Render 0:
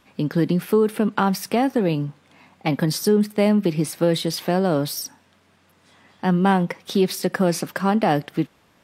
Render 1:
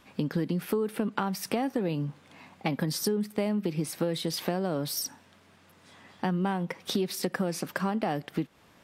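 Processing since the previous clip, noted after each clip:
downward compressor 4 to 1, threshold −27 dBFS, peak gain reduction 13 dB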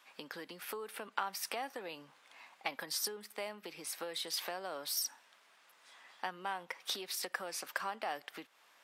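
high-pass filter 850 Hz 12 dB per octave
level −3 dB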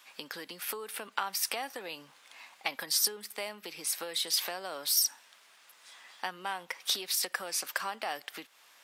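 high-shelf EQ 2,600 Hz +9 dB
level +1.5 dB

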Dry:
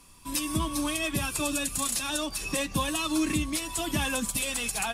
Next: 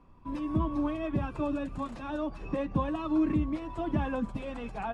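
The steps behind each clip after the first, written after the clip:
low-pass filter 1,000 Hz 12 dB per octave
level +1 dB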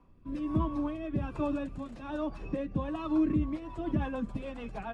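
rotating-speaker cabinet horn 1.2 Hz, later 7 Hz, at 0:03.05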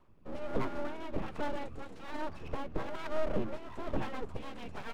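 full-wave rectification
level −1 dB

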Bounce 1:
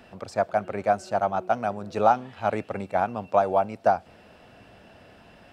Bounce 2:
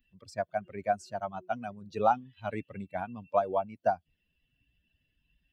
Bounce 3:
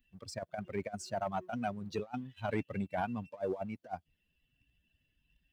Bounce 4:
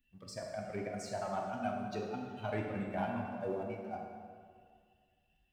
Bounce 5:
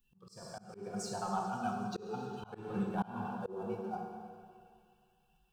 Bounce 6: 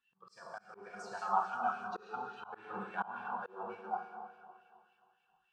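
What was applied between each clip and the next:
spectral dynamics exaggerated over time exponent 2; level −3 dB
compressor whose output falls as the input rises −34 dBFS, ratio −0.5; leveller curve on the samples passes 1; level −4 dB
dense smooth reverb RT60 2 s, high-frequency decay 0.7×, DRR −1 dB; level −4 dB
phaser with its sweep stopped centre 410 Hz, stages 8; delay with a high-pass on its return 136 ms, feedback 79%, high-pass 1,700 Hz, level −16 dB; volume swells 235 ms; level +6 dB
auto-filter band-pass sine 3.5 Hz 1,000–2,100 Hz; level +9.5 dB

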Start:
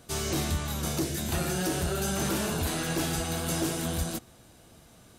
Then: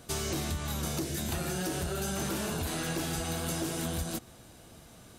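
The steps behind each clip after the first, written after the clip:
downward compressor, threshold −32 dBFS, peak gain reduction 7.5 dB
level +2 dB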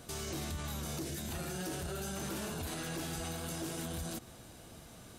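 brickwall limiter −31 dBFS, peak gain reduction 9.5 dB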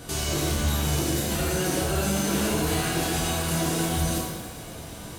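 reverb with rising layers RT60 1 s, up +7 semitones, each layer −8 dB, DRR −3 dB
level +8.5 dB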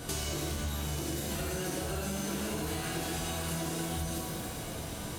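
downward compressor 6 to 1, threshold −32 dBFS, peak gain reduction 11.5 dB

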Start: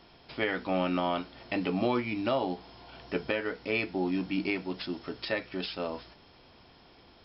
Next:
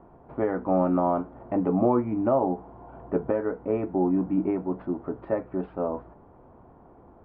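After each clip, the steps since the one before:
low-pass filter 1,100 Hz 24 dB per octave
level +6.5 dB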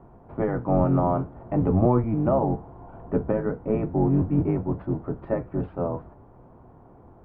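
sub-octave generator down 1 octave, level +2 dB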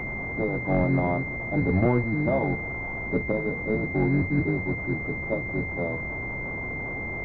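linear delta modulator 16 kbit/s, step −26.5 dBFS
switching amplifier with a slow clock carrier 2,100 Hz
level −2 dB

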